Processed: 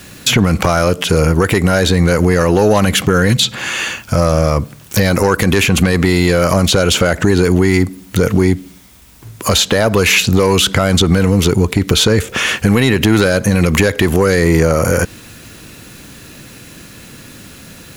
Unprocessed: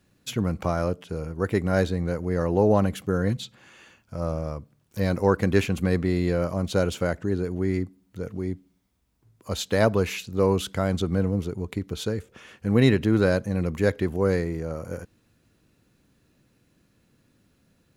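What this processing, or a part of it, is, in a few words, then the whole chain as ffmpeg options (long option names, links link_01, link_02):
mastering chain: -filter_complex "[0:a]equalizer=frequency=4600:width_type=o:width=0.77:gain=-2,acrossover=split=1600|6700[link_01][link_02][link_03];[link_01]acompressor=threshold=-26dB:ratio=4[link_04];[link_02]acompressor=threshold=-43dB:ratio=4[link_05];[link_03]acompressor=threshold=-56dB:ratio=4[link_06];[link_04][link_05][link_06]amix=inputs=3:normalize=0,acompressor=threshold=-33dB:ratio=2,asoftclip=type=tanh:threshold=-23.5dB,tiltshelf=frequency=1300:gain=-5,alimiter=level_in=31.5dB:limit=-1dB:release=50:level=0:latency=1,volume=-1dB"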